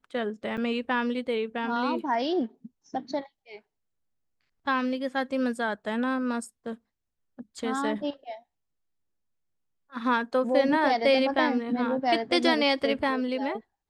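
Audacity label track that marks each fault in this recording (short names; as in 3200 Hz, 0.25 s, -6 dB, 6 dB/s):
0.570000	0.580000	gap 7.6 ms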